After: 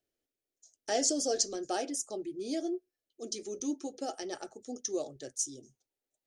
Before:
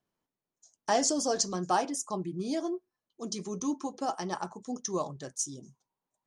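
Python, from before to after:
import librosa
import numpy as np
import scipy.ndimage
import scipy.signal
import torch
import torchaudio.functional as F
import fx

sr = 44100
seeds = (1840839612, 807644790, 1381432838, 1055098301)

y = fx.fixed_phaser(x, sr, hz=420.0, stages=4)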